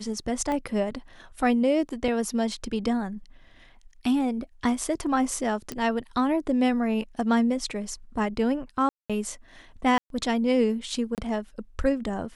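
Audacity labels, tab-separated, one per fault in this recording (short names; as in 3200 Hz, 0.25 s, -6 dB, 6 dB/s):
0.520000	0.520000	pop -18 dBFS
2.080000	2.080000	gap 2.9 ms
5.720000	5.720000	pop -17 dBFS
8.890000	9.100000	gap 0.206 s
9.980000	10.100000	gap 0.122 s
11.150000	11.180000	gap 28 ms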